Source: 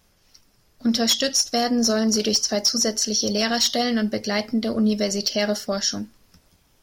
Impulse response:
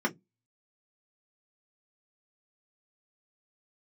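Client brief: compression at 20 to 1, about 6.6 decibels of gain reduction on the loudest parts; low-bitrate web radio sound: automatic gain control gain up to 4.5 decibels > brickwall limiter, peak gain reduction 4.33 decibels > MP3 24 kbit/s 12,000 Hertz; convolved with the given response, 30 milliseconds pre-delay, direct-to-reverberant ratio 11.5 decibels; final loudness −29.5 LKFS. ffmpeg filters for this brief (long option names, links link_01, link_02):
-filter_complex "[0:a]acompressor=threshold=-22dB:ratio=20,asplit=2[link_01][link_02];[1:a]atrim=start_sample=2205,adelay=30[link_03];[link_02][link_03]afir=irnorm=-1:irlink=0,volume=-21dB[link_04];[link_01][link_04]amix=inputs=2:normalize=0,dynaudnorm=maxgain=4.5dB,alimiter=limit=-17.5dB:level=0:latency=1,volume=-1.5dB" -ar 12000 -c:a libmp3lame -b:a 24k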